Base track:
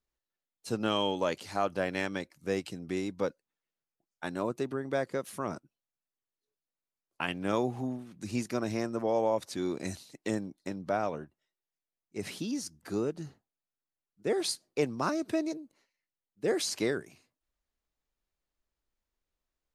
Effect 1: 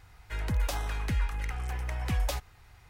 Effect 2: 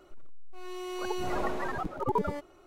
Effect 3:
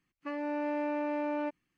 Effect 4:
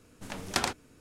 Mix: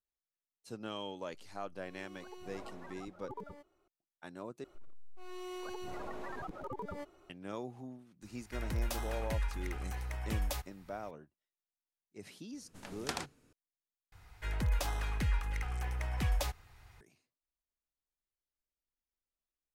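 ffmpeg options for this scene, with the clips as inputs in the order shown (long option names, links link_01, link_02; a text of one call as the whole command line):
ffmpeg -i bed.wav -i cue0.wav -i cue1.wav -i cue2.wav -i cue3.wav -filter_complex "[2:a]asplit=2[link_01][link_02];[1:a]asplit=2[link_03][link_04];[0:a]volume=-12.5dB[link_05];[link_02]acompressor=threshold=-32dB:ratio=6:attack=3.2:release=140:knee=1:detection=peak[link_06];[link_03]highshelf=frequency=10000:gain=7[link_07];[link_05]asplit=3[link_08][link_09][link_10];[link_08]atrim=end=4.644[link_11];[link_06]atrim=end=2.66,asetpts=PTS-STARTPTS,volume=-5.5dB[link_12];[link_09]atrim=start=7.296:end=14.124[link_13];[link_04]atrim=end=2.89,asetpts=PTS-STARTPTS,volume=-3dB[link_14];[link_10]atrim=start=17.006[link_15];[link_01]atrim=end=2.66,asetpts=PTS-STARTPTS,volume=-17.5dB,afade=type=in:duration=0.004:curve=hsin,afade=type=out:start_time=2.656:duration=0.004:curve=hsin,adelay=1220[link_16];[link_07]atrim=end=2.89,asetpts=PTS-STARTPTS,volume=-6dB,afade=type=in:duration=0.004:curve=hsin,afade=type=out:start_time=2.886:duration=0.004:curve=hsin,adelay=8220[link_17];[4:a]atrim=end=1,asetpts=PTS-STARTPTS,volume=-9.5dB,afade=type=in:duration=0.004:curve=hsin,afade=type=out:start_time=0.996:duration=0.004:curve=hsin,adelay=12530[link_18];[link_11][link_12]acrossfade=duration=0.004:curve1=hsin:curve2=hsin[link_19];[link_19][link_13]acrossfade=duration=0.004:curve1=hsin:curve2=hsin[link_20];[link_20][link_14]acrossfade=duration=0.004:curve1=hsin:curve2=hsin[link_21];[link_21][link_15]acrossfade=duration=0.004:curve1=hsin:curve2=hsin[link_22];[link_22][link_16][link_17][link_18]amix=inputs=4:normalize=0" out.wav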